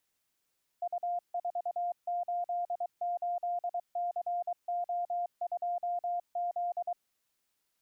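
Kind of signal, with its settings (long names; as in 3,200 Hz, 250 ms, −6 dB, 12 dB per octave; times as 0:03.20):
Morse code "U488CO2Z" 23 words per minute 702 Hz −30 dBFS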